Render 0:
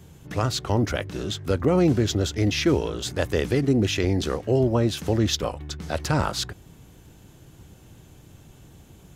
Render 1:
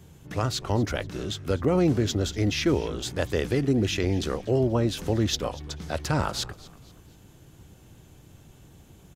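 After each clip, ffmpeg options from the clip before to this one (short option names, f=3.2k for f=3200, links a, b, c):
-filter_complex "[0:a]asplit=4[a][b][c][d];[b]adelay=240,afreqshift=-82,volume=-20dB[e];[c]adelay=480,afreqshift=-164,volume=-28dB[f];[d]adelay=720,afreqshift=-246,volume=-35.9dB[g];[a][e][f][g]amix=inputs=4:normalize=0,volume=-2.5dB"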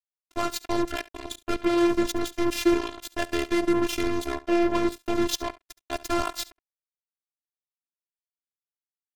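-af "acrusher=bits=3:mix=0:aa=0.5,aecho=1:1:70:0.106,afftfilt=real='hypot(re,im)*cos(PI*b)':imag='0':win_size=512:overlap=0.75,volume=3.5dB"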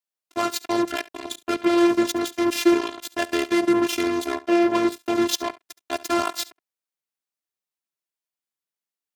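-af "highpass=160,volume=4dB"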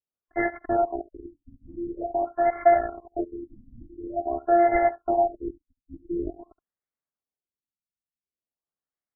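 -af "afftfilt=real='real(if(between(b,1,1008),(2*floor((b-1)/48)+1)*48-b,b),0)':imag='imag(if(between(b,1,1008),(2*floor((b-1)/48)+1)*48-b,b),0)*if(between(b,1,1008),-1,1)':win_size=2048:overlap=0.75,equalizer=f=1.8k:w=1.9:g=-2.5,afftfilt=real='re*lt(b*sr/1024,280*pow(2300/280,0.5+0.5*sin(2*PI*0.47*pts/sr)))':imag='im*lt(b*sr/1024,280*pow(2300/280,0.5+0.5*sin(2*PI*0.47*pts/sr)))':win_size=1024:overlap=0.75"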